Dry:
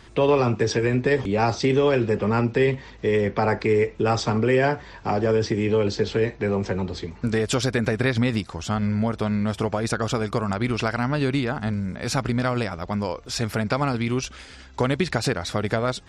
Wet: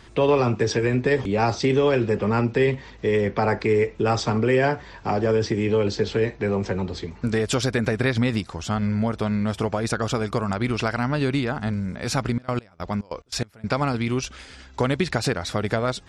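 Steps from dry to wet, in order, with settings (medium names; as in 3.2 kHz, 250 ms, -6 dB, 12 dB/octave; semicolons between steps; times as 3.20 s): 12.31–13.74 s: trance gate "..xx.x.x" 143 bpm -24 dB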